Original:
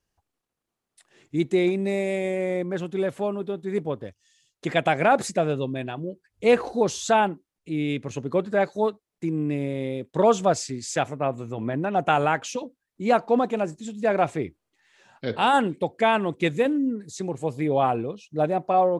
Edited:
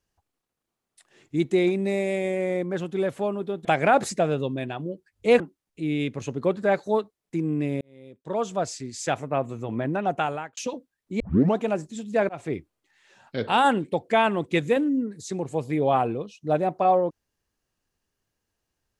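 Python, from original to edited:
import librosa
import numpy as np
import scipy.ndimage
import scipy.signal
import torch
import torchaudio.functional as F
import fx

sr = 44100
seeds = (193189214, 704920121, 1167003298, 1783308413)

y = fx.edit(x, sr, fx.cut(start_s=3.65, length_s=1.18),
    fx.cut(start_s=6.58, length_s=0.71),
    fx.fade_in_span(start_s=9.7, length_s=1.53),
    fx.fade_out_span(start_s=11.85, length_s=0.61),
    fx.tape_start(start_s=13.09, length_s=0.38),
    fx.fade_in_span(start_s=14.18, length_s=0.25), tone=tone)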